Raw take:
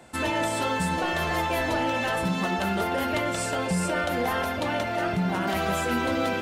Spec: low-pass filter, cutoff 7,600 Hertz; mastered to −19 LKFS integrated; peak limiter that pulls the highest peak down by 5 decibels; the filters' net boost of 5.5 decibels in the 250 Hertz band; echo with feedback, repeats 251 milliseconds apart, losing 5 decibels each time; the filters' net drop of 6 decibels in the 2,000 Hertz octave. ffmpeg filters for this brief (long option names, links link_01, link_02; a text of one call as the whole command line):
ffmpeg -i in.wav -af "lowpass=7600,equalizer=frequency=250:width_type=o:gain=7.5,equalizer=frequency=2000:width_type=o:gain=-8,alimiter=limit=-18dB:level=0:latency=1,aecho=1:1:251|502|753|1004|1255|1506|1757:0.562|0.315|0.176|0.0988|0.0553|0.031|0.0173,volume=6dB" out.wav